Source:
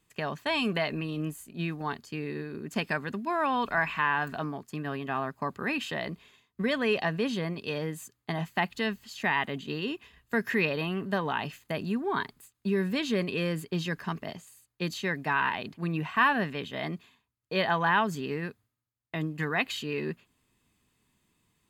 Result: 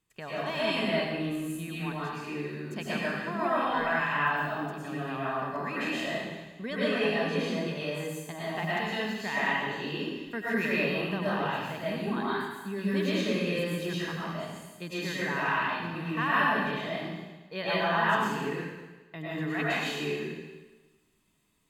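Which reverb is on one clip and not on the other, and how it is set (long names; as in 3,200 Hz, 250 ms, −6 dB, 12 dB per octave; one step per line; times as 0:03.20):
comb and all-pass reverb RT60 1.2 s, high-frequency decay 1×, pre-delay 75 ms, DRR −8.5 dB
level −8.5 dB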